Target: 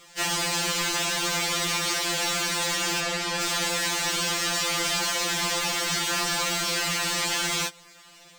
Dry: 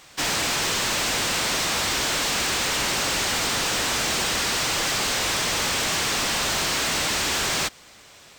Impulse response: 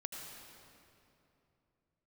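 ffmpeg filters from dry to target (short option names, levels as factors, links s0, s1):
-filter_complex "[0:a]asettb=1/sr,asplit=3[s0][s1][s2];[s0]atrim=end=3.004[s3];[s1]atrim=start=3:end=3.4,asetpts=PTS-STARTPTS,afade=t=in:d=0.004:c=qsin,afade=t=out:st=0.396:d=0.004:c=qsin,highshelf=f=7100:g=-11[s4];[s2]atrim=start=3.396[s5];[s3][s4]acrossfade=d=0.004:c1=hsin:c2=qsin[s6];[s6][s5]acrossfade=d=0.004:c1=qsin:c2=hsin,afftfilt=real='re*2.83*eq(mod(b,8),0)':imag='im*2.83*eq(mod(b,8),0)':win_size=2048:overlap=0.75"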